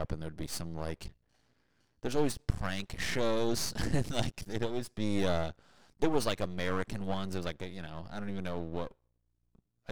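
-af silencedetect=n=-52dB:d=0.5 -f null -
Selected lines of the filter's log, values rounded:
silence_start: 1.12
silence_end: 2.03 | silence_duration: 0.91
silence_start: 8.92
silence_end: 9.55 | silence_duration: 0.63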